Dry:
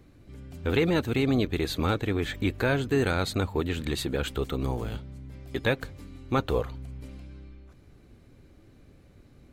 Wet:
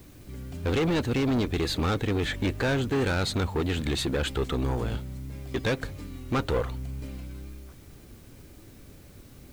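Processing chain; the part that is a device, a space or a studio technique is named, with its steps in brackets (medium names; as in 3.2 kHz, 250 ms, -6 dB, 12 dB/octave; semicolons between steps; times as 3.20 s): compact cassette (saturation -26.5 dBFS, distortion -9 dB; low-pass 9.5 kHz; wow and flutter; white noise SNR 30 dB); trim +5 dB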